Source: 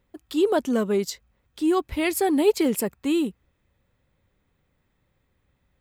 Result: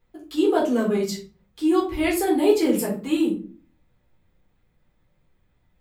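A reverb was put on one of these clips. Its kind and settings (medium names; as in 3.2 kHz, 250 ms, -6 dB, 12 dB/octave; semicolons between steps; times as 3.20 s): simulated room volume 240 m³, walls furnished, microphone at 3.9 m; trim -6.5 dB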